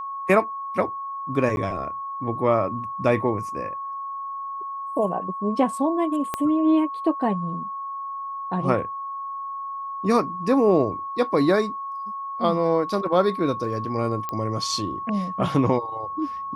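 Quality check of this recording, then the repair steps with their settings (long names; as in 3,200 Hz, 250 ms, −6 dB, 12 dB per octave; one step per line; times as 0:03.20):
whistle 1,100 Hz −29 dBFS
0:01.56–0:01.57: drop-out 11 ms
0:06.34: click −11 dBFS
0:14.29: click −15 dBFS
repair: click removal
notch filter 1,100 Hz, Q 30
repair the gap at 0:01.56, 11 ms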